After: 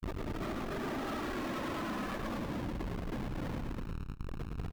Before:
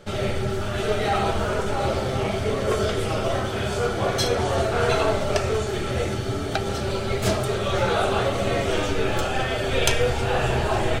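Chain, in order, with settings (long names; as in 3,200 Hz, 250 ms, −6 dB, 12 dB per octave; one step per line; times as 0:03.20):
variable-slope delta modulation 32 kbit/s
source passing by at 0:03.15, 24 m/s, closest 13 metres
low-shelf EQ 440 Hz +10.5 dB
comparator with hysteresis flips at −30.5 dBFS
parametric band 4,000 Hz −10 dB 2.4 octaves
phase-vocoder pitch shift with formants kept +3.5 semitones
on a send: repeating echo 254 ms, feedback 32%, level −6 dB
on the sum: change of speed 2.33×
downward compressor 2.5 to 1, threshold −31 dBFS, peak gain reduction 6 dB
level −5.5 dB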